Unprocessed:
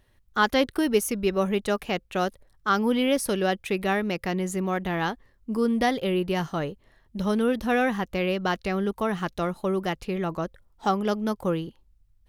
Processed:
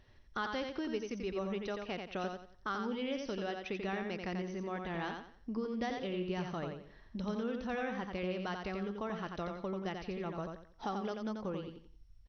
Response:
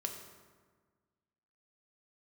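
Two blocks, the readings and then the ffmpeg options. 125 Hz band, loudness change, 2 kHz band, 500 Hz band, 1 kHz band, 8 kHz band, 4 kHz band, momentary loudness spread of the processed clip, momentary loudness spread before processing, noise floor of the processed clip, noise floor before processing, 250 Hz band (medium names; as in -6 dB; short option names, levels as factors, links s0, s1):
-11.5 dB, -12.5 dB, -13.0 dB, -12.5 dB, -13.0 dB, -21.0 dB, -13.0 dB, 5 LU, 8 LU, -61 dBFS, -63 dBFS, -12.5 dB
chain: -af "acompressor=threshold=0.00708:ratio=2.5,aecho=1:1:88|176|264|352:0.562|0.169|0.0506|0.0152" -ar 22050 -c:a mp2 -b:a 64k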